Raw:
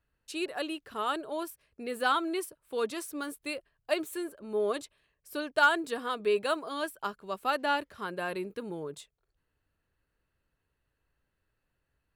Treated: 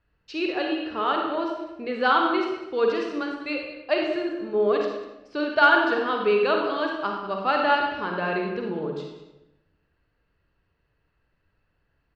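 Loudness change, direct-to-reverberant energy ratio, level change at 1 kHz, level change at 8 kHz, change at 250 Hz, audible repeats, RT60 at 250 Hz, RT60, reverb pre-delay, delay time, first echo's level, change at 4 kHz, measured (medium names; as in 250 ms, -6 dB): +8.0 dB, 0.5 dB, +8.0 dB, under -10 dB, +9.0 dB, 1, 1.1 s, 0.95 s, 39 ms, 196 ms, -14.5 dB, +5.5 dB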